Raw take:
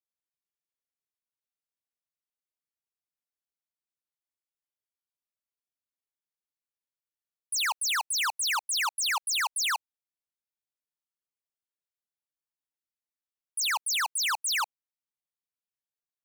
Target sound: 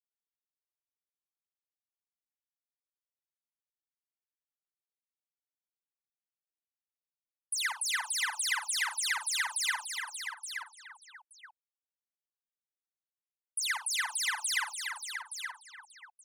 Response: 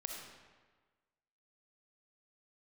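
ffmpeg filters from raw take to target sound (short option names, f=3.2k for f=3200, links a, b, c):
-filter_complex "[0:a]superequalizer=11b=2.51:12b=0.708:16b=1.58,asplit=2[a][b];[b]aecho=0:1:875:0.188[c];[a][c]amix=inputs=2:normalize=0,acompressor=threshold=-25dB:ratio=6,afftdn=nr=28:nf=-43,asplit=2[d][e];[e]aecho=0:1:52|80|89|334|514|872:0.266|0.112|0.126|0.355|0.158|0.355[f];[d][f]amix=inputs=2:normalize=0,volume=-4.5dB"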